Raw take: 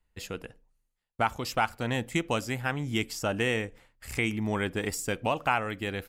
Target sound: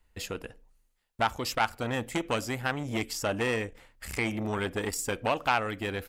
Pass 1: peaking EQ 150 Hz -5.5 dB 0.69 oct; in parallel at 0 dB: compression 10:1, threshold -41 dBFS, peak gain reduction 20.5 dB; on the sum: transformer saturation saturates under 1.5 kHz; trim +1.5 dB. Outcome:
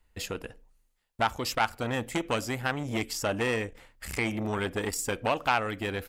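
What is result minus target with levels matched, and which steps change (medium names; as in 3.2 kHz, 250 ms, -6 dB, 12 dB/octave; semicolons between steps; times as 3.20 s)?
compression: peak gain reduction -5.5 dB
change: compression 10:1, threshold -47 dBFS, peak gain reduction 26 dB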